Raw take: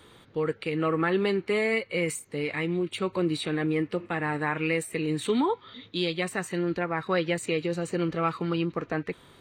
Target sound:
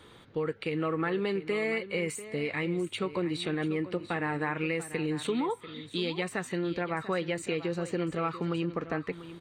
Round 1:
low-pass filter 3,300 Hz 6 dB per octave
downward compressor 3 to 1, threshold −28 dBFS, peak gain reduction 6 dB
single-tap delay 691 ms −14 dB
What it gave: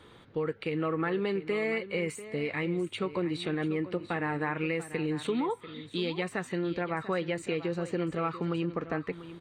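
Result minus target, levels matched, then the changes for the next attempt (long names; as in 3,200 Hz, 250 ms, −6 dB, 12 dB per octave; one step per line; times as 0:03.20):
8,000 Hz band −4.5 dB
change: low-pass filter 7,300 Hz 6 dB per octave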